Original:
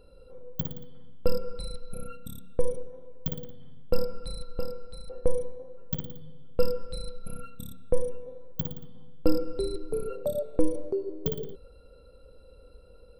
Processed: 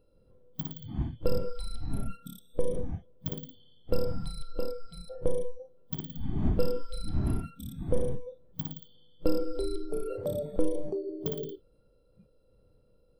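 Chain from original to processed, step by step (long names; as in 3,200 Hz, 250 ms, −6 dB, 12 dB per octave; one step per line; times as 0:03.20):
compressor on every frequency bin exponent 0.6
wind on the microphone 160 Hz −33 dBFS
noise reduction from a noise print of the clip's start 23 dB
level −5 dB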